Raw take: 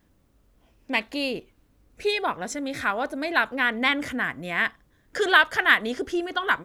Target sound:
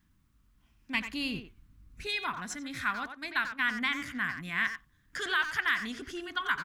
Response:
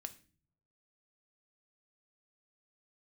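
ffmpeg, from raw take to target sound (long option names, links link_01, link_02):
-filter_complex "[0:a]firequalizer=gain_entry='entry(190,0);entry(500,-20);entry(1100,-1)':delay=0.05:min_phase=1,alimiter=limit=-13dB:level=0:latency=1:release=159,asettb=1/sr,asplit=3[link_01][link_02][link_03];[link_01]atrim=end=0.944[link_04];[link_02]atrim=start=0.94:end=2.07,asetpts=PTS-STARTPTS,afade=type=in:duration=0.004:curve=qsin,afade=type=out:start_time=1.126:duration=0.004:curve=qsin,lowshelf=frequency=260:gain=9.5[link_05];[link_03]atrim=start=2.066[link_06];[link_04][link_05]acrossfade=duration=0.004:curve1=hsin:curve2=qsin[link_07];[link_07][link_06]acrossfade=duration=0.004:curve1=qsin:curve2=hsin,asplit=3[link_08][link_09][link_10];[link_08]afade=type=out:start_time=2.92:duration=0.02[link_11];[link_09]agate=range=-17dB:threshold=-35dB:ratio=16:detection=peak,afade=type=in:start_time=2.92:duration=0.02,afade=type=out:start_time=4.29:duration=0.02[link_12];[link_10]afade=type=in:start_time=4.29:duration=0.02[link_13];[link_11][link_12][link_13]amix=inputs=3:normalize=0,asplit=2[link_14][link_15];[link_15]adelay=90,highpass=300,lowpass=3400,asoftclip=type=hard:threshold=-22dB,volume=-7dB[link_16];[link_14][link_16]amix=inputs=2:normalize=0,volume=-4dB"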